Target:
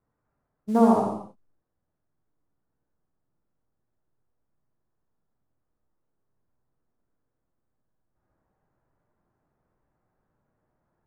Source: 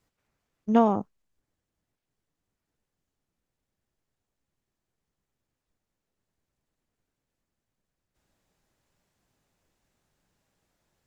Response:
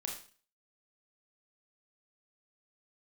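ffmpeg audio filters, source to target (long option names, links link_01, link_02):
-filter_complex "[0:a]lowpass=frequency=1400:width=0.5412,lowpass=frequency=1400:width=1.3066,aemphasis=mode=production:type=75fm,acrusher=bits=7:mode=log:mix=0:aa=0.000001[link_01];[1:a]atrim=start_sample=2205,afade=type=out:start_time=0.22:duration=0.01,atrim=end_sample=10143,asetrate=22932,aresample=44100[link_02];[link_01][link_02]afir=irnorm=-1:irlink=0,volume=-2dB"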